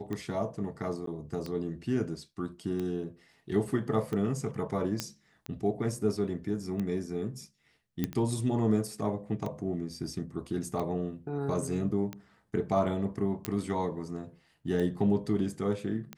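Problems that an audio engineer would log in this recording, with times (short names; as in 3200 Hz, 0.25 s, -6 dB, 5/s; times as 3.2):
tick 45 rpm -23 dBFS
1.06–1.07 gap 13 ms
5 pop -14 dBFS
8.04 pop -16 dBFS
13.45 pop -14 dBFS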